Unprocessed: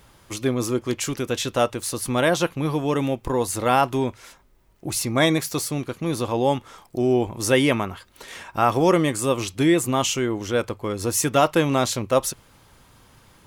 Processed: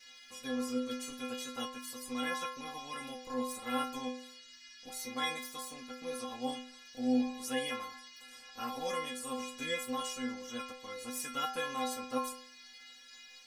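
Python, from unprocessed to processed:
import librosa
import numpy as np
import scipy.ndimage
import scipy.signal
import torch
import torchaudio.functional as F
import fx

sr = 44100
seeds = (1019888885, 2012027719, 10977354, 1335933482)

y = fx.spec_clip(x, sr, under_db=13)
y = fx.dmg_noise_band(y, sr, seeds[0], low_hz=1500.0, high_hz=5800.0, level_db=-39.0)
y = fx.stiff_resonator(y, sr, f0_hz=250.0, decay_s=0.58, stiffness=0.008)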